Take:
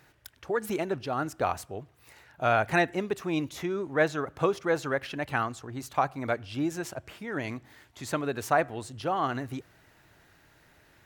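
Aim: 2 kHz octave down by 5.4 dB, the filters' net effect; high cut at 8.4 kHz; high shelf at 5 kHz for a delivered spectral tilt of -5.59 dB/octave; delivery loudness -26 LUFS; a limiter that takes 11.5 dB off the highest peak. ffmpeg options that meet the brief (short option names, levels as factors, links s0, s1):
-af "lowpass=8400,equalizer=f=2000:t=o:g=-7,highshelf=f=5000:g=-3.5,volume=2.82,alimiter=limit=0.2:level=0:latency=1"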